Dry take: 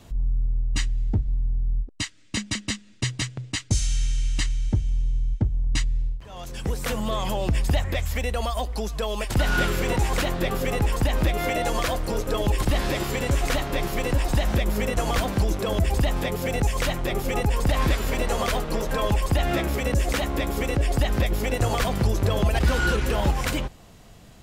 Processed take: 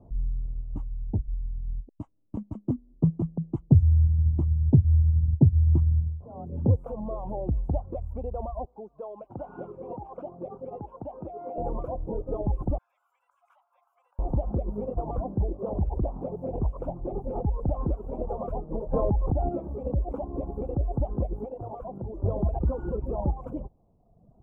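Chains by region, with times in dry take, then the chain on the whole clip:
0:02.68–0:06.76: low-shelf EQ 490 Hz +9.5 dB + frequency shifter +38 Hz
0:08.65–0:11.58: band-pass filter 110–4,100 Hz + low-shelf EQ 410 Hz −11.5 dB
0:12.78–0:14.19: inverse Chebyshev high-pass filter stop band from 340 Hz, stop band 70 dB + high-shelf EQ 4,300 Hz −6.5 dB
0:15.48–0:17.44: notch filter 1,900 Hz, Q 24 + highs frequency-modulated by the lows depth 0.85 ms
0:18.93–0:19.49: low-pass filter 2,600 Hz 6 dB per octave + envelope flattener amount 100%
0:21.45–0:22.24: low-shelf EQ 160 Hz −6.5 dB + mains-hum notches 50/100/150/200/250/300/350/400/450 Hz + downward compressor 2 to 1, threshold −28 dBFS
whole clip: reverb reduction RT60 1.4 s; inverse Chebyshev low-pass filter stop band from 1,700 Hz, stop band 40 dB; level −3 dB

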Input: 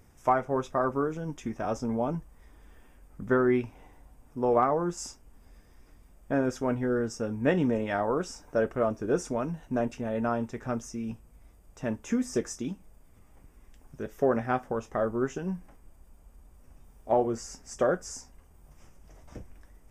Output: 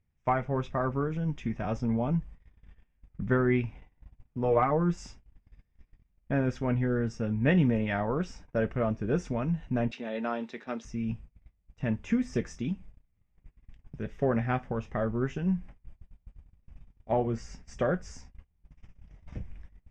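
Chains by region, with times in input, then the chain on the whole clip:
0:04.43–0:04.96: parametric band 140 Hz −5.5 dB 0.32 octaves + comb filter 6.5 ms, depth 61%
0:09.91–0:10.85: high-pass filter 260 Hz 24 dB per octave + parametric band 4,000 Hz +15 dB 0.4 octaves
whole clip: flat-topped bell 630 Hz −10.5 dB 2.9 octaves; noise gate −50 dBFS, range −23 dB; low-pass filter 2,500 Hz 12 dB per octave; level +7 dB

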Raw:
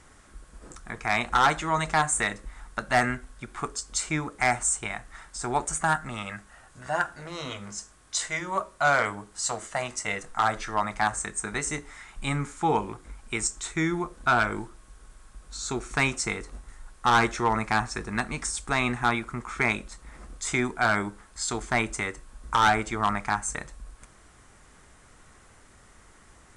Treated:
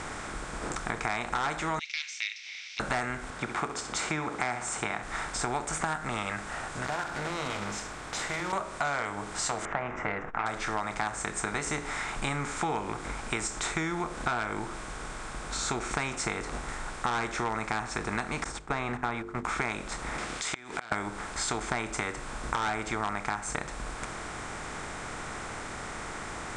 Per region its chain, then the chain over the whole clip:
0:01.79–0:02.80: Chebyshev band-pass filter 2,200–5,900 Hz, order 5 + upward compression, threshold −46 dBFS
0:03.30–0:05.03: high-pass filter 120 Hz + high-shelf EQ 6,200 Hz −11.5 dB + flutter between parallel walls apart 11.2 metres, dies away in 0.25 s
0:06.85–0:08.53: one scale factor per block 3 bits + high-shelf EQ 6,200 Hz −9 dB + downward compressor 2 to 1, threshold −45 dBFS
0:09.65–0:10.46: inverse Chebyshev low-pass filter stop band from 4,000 Hz + upward compression, threshold −42 dBFS + saturating transformer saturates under 510 Hz
0:18.44–0:19.45: noise gate −32 dBFS, range −21 dB + low-pass filter 1,200 Hz 6 dB per octave + mains-hum notches 50/100/150/200/250/300/350/400/450 Hz
0:20.18–0:20.92: meter weighting curve D + downward compressor 2 to 1, threshold −47 dBFS + gate with flip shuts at −26 dBFS, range −28 dB
whole clip: compressor on every frequency bin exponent 0.6; Bessel low-pass filter 7,600 Hz, order 2; downward compressor, threshold −28 dBFS

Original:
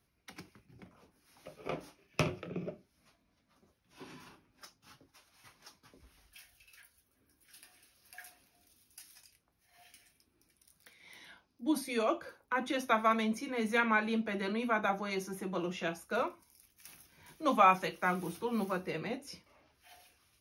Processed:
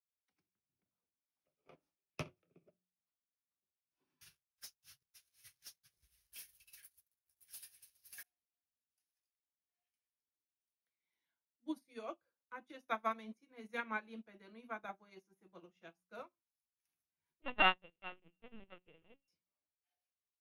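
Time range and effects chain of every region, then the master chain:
0:04.21–0:08.23: drawn EQ curve 150 Hz 0 dB, 250 Hz −30 dB, 370 Hz −14 dB, 1,000 Hz −19 dB, 1,600 Hz −1 dB, 2,500 Hz +2 dB, 12,000 Hz +13 dB + leveller curve on the samples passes 5
0:17.42–0:19.28: samples sorted by size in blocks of 16 samples + linear-prediction vocoder at 8 kHz pitch kept
whole clip: hum removal 60.75 Hz, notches 3; expander for the loud parts 2.5 to 1, over −44 dBFS; level −3.5 dB

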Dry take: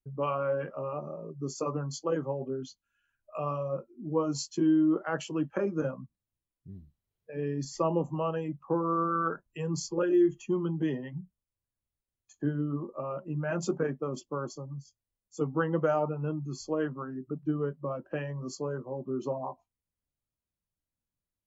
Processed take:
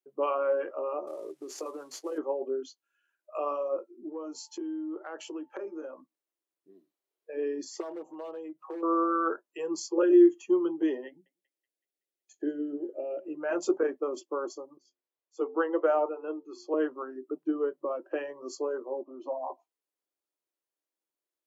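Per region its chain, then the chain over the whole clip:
0:01.07–0:02.18: variable-slope delta modulation 64 kbit/s + downward compressor 4 to 1, threshold −36 dBFS
0:04.08–0:06.00: downward compressor 4 to 1, threshold −39 dBFS + steady tone 880 Hz −69 dBFS
0:07.80–0:08.83: gain into a clipping stage and back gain 25.5 dB + comb filter 6.4 ms, depth 95% + downward compressor 10 to 1, threshold −38 dBFS
0:11.07–0:13.35: Butterworth band-reject 1,100 Hz, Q 1.1 + feedback echo with a band-pass in the loop 188 ms, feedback 54%, band-pass 2,200 Hz, level −20 dB
0:14.77–0:16.74: three-way crossover with the lows and the highs turned down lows −22 dB, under 280 Hz, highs −14 dB, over 4,300 Hz + hum removal 89.32 Hz, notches 6
0:19.03–0:19.50: band-pass filter 320–2,800 Hz + phaser with its sweep stopped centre 410 Hz, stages 6
whole clip: elliptic high-pass filter 330 Hz, stop band 70 dB; low-shelf EQ 440 Hz +9 dB

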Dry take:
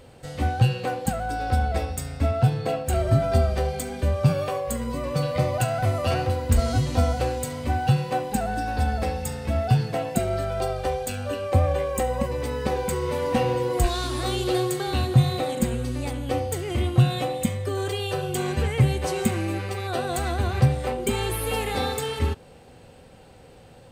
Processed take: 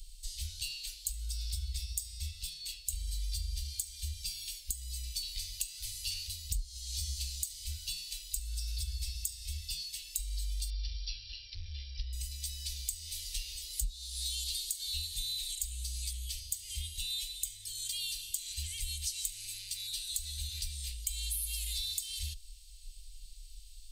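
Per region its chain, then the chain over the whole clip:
0:10.70–0:12.13: linear-phase brick-wall low-pass 5,800 Hz + parametric band 220 Hz +6 dB 1.6 octaves + saturating transformer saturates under 400 Hz
whole clip: inverse Chebyshev band-stop filter 110–1,300 Hz, stop band 60 dB; low-shelf EQ 320 Hz +11.5 dB; downward compressor 12 to 1, threshold −38 dBFS; level +6 dB

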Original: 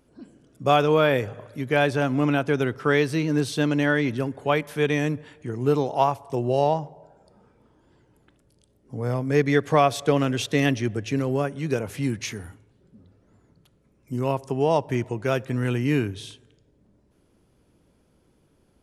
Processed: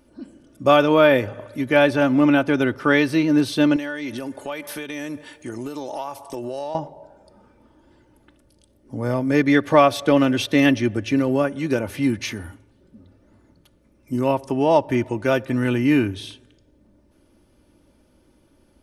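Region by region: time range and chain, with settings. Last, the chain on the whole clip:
0:03.76–0:06.75: bass and treble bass −7 dB, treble +9 dB + downward compressor 8 to 1, threshold −30 dBFS
whole clip: notch filter 7,200 Hz, Q 11; comb filter 3.4 ms, depth 51%; dynamic equaliser 7,600 Hz, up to −6 dB, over −51 dBFS, Q 1.2; level +4 dB

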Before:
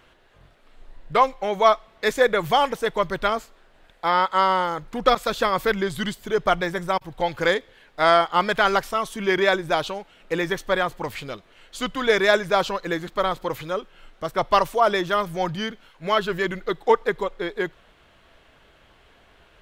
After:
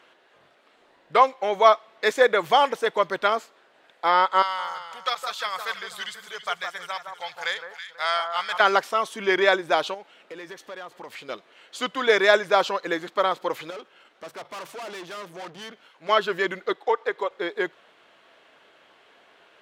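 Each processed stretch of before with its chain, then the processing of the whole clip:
0:04.42–0:08.60: guitar amp tone stack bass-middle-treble 10-0-10 + delay that swaps between a low-pass and a high-pass 163 ms, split 1,400 Hz, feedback 54%, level −5 dB
0:09.94–0:11.29: downward compressor 4 to 1, threshold −36 dBFS + gain into a clipping stage and back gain 32.5 dB
0:13.70–0:16.09: tube saturation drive 35 dB, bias 0.4 + mains-hum notches 50/100/150 Hz
0:16.73–0:17.31: high-pass filter 350 Hz + high-shelf EQ 7,900 Hz −8.5 dB + downward compressor 2 to 1, threshold −20 dBFS
whole clip: high-pass filter 330 Hz 12 dB per octave; high-shelf EQ 11,000 Hz −11.5 dB; level +1 dB

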